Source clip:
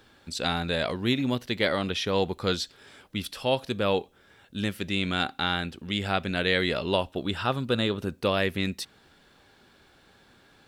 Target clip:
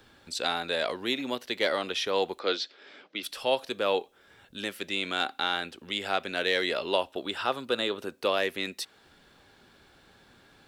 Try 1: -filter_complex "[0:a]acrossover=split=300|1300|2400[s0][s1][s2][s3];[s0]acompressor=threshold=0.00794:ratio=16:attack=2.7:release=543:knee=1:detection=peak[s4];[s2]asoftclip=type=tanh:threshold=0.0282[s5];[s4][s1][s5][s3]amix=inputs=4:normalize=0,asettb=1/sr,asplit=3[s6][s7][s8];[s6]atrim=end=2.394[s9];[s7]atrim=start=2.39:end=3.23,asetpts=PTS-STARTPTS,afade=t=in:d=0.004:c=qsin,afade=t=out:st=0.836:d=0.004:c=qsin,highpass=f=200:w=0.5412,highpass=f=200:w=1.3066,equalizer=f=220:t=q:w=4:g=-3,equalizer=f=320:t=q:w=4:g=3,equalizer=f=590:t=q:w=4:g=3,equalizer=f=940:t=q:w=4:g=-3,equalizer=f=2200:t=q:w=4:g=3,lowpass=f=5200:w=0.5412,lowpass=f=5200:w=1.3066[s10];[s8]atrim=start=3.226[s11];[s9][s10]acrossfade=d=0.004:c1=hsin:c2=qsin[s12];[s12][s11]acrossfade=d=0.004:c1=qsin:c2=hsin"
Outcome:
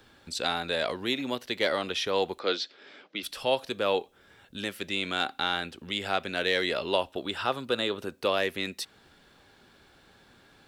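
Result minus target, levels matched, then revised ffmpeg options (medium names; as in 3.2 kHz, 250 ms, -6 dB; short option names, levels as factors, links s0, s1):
compression: peak gain reduction -8 dB
-filter_complex "[0:a]acrossover=split=300|1300|2400[s0][s1][s2][s3];[s0]acompressor=threshold=0.00299:ratio=16:attack=2.7:release=543:knee=1:detection=peak[s4];[s2]asoftclip=type=tanh:threshold=0.0282[s5];[s4][s1][s5][s3]amix=inputs=4:normalize=0,asettb=1/sr,asplit=3[s6][s7][s8];[s6]atrim=end=2.394[s9];[s7]atrim=start=2.39:end=3.23,asetpts=PTS-STARTPTS,afade=t=in:d=0.004:c=qsin,afade=t=out:st=0.836:d=0.004:c=qsin,highpass=f=200:w=0.5412,highpass=f=200:w=1.3066,equalizer=f=220:t=q:w=4:g=-3,equalizer=f=320:t=q:w=4:g=3,equalizer=f=590:t=q:w=4:g=3,equalizer=f=940:t=q:w=4:g=-3,equalizer=f=2200:t=q:w=4:g=3,lowpass=f=5200:w=0.5412,lowpass=f=5200:w=1.3066[s10];[s8]atrim=start=3.226[s11];[s9][s10]acrossfade=d=0.004:c1=hsin:c2=qsin[s12];[s12][s11]acrossfade=d=0.004:c1=qsin:c2=hsin"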